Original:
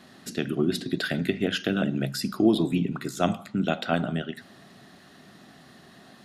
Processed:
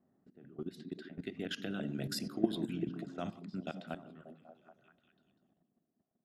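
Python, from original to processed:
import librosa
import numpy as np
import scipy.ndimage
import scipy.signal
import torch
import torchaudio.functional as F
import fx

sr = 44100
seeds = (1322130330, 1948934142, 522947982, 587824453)

y = fx.doppler_pass(x, sr, speed_mps=5, closest_m=2.4, pass_at_s=2.27)
y = fx.level_steps(y, sr, step_db=17)
y = fx.env_lowpass(y, sr, base_hz=610.0, full_db=-34.5)
y = fx.echo_stepped(y, sr, ms=195, hz=200.0, octaves=0.7, feedback_pct=70, wet_db=-5.5)
y = y * 10.0 ** (-4.0 / 20.0)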